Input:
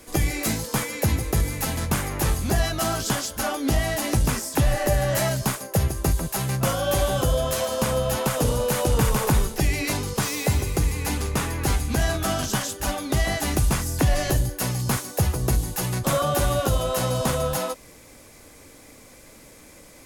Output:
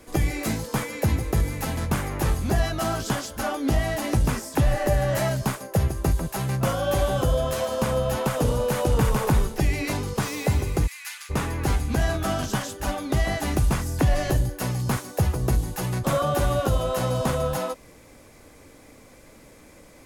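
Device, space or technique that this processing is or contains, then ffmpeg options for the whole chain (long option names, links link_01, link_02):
behind a face mask: -filter_complex "[0:a]asplit=3[link_01][link_02][link_03];[link_01]afade=type=out:start_time=10.86:duration=0.02[link_04];[link_02]highpass=frequency=1500:width=0.5412,highpass=frequency=1500:width=1.3066,afade=type=in:start_time=10.86:duration=0.02,afade=type=out:start_time=11.29:duration=0.02[link_05];[link_03]afade=type=in:start_time=11.29:duration=0.02[link_06];[link_04][link_05][link_06]amix=inputs=3:normalize=0,highshelf=frequency=3000:gain=-7.5"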